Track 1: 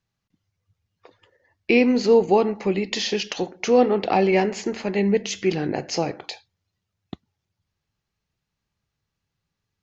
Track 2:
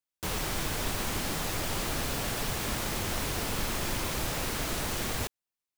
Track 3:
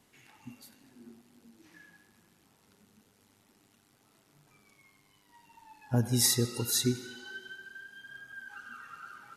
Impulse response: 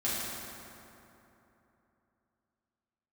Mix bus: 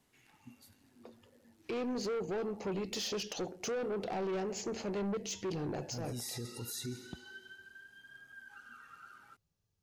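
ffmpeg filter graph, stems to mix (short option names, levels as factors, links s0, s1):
-filter_complex "[0:a]equalizer=f=250:t=o:w=1:g=-6,equalizer=f=1000:t=o:w=1:g=-6,equalizer=f=2000:t=o:w=1:g=-11,equalizer=f=4000:t=o:w=1:g=-5,alimiter=limit=0.126:level=0:latency=1:release=371,asoftclip=type=tanh:threshold=0.0335,volume=0.944[s0];[2:a]volume=0.447[s1];[s0][s1]amix=inputs=2:normalize=0,alimiter=level_in=2.66:limit=0.0631:level=0:latency=1:release=18,volume=0.376"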